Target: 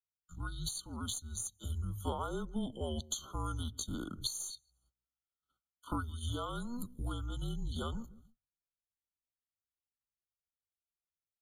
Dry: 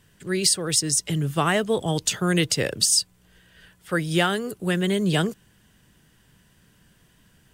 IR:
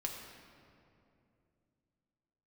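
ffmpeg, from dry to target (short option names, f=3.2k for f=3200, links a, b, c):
-filter_complex "[0:a]highpass=160,agate=range=-32dB:threshold=-48dB:ratio=16:detection=peak,highshelf=f=5.8k:g=3,asplit=2[a][b];[b]adelay=100,lowpass=f=950:p=1,volume=-21dB,asplit=2[c][d];[d]adelay=100,lowpass=f=950:p=1,volume=0.28[e];[c][e]amix=inputs=2:normalize=0[f];[a][f]amix=inputs=2:normalize=0,acrossover=split=210[g][h];[g]acompressor=threshold=-30dB:ratio=4[i];[i][h]amix=inputs=2:normalize=0,afftdn=nr=13:nf=-47,acompressor=threshold=-31dB:ratio=12,bandreject=f=370:w=12,atempo=0.66,afreqshift=-240,aeval=exprs='0.133*(cos(1*acos(clip(val(0)/0.133,-1,1)))-cos(1*PI/2))+0.00531*(cos(4*acos(clip(val(0)/0.133,-1,1)))-cos(4*PI/2))':c=same,afftfilt=real='re*eq(mod(floor(b*sr/1024/1500),2),0)':imag='im*eq(mod(floor(b*sr/1024/1500),2),0)':win_size=1024:overlap=0.75,volume=-2dB"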